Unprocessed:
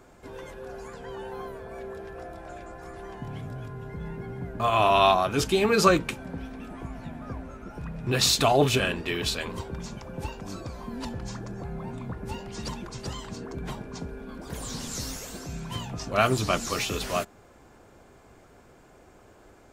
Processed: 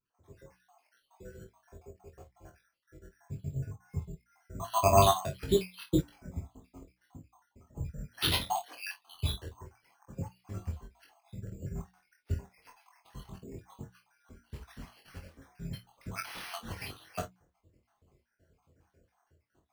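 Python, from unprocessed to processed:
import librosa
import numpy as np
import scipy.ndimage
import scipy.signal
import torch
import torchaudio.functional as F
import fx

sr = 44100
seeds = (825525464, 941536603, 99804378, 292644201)

y = fx.spec_dropout(x, sr, seeds[0], share_pct=73)
y = scipy.signal.sosfilt(scipy.signal.butter(2, 41.0, 'highpass', fs=sr, output='sos'), y)
y = fx.peak_eq(y, sr, hz=79.0, db=14.5, octaves=2.1)
y = fx.hum_notches(y, sr, base_hz=60, count=5)
y = fx.vibrato(y, sr, rate_hz=0.6, depth_cents=52.0)
y = fx.spec_paint(y, sr, seeds[1], shape='noise', start_s=16.24, length_s=0.3, low_hz=650.0, high_hz=3500.0, level_db=-35.0)
y = fx.vibrato(y, sr, rate_hz=6.7, depth_cents=8.7)
y = np.repeat(y[::6], 6)[:len(y)]
y = fx.doubler(y, sr, ms=28.0, db=-13.5)
y = fx.room_early_taps(y, sr, ms=(22, 48, 59), db=(-3.5, -9.0, -14.5))
y = fx.upward_expand(y, sr, threshold_db=-42.0, expansion=1.5)
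y = F.gain(torch.from_numpy(y), -3.0).numpy()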